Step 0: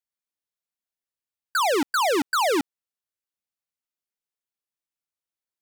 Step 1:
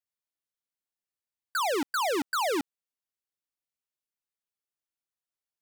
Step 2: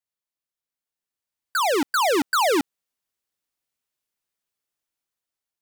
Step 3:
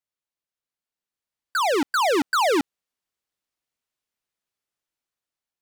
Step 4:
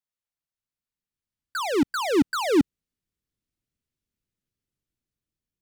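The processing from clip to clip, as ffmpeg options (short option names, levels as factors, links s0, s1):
-af "asoftclip=type=hard:threshold=0.0708,volume=0.631"
-af "dynaudnorm=f=560:g=5:m=2.51"
-af "highshelf=f=8400:g=-7.5"
-af "asubboost=boost=12:cutoff=250,volume=0.596"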